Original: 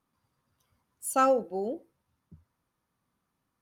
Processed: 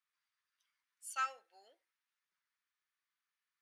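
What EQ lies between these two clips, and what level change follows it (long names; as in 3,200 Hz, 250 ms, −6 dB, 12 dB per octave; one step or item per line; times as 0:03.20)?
four-pole ladder band-pass 2,200 Hz, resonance 40%
spectral tilt +4 dB per octave
parametric band 2,100 Hz −3 dB 1.7 octaves
+3.0 dB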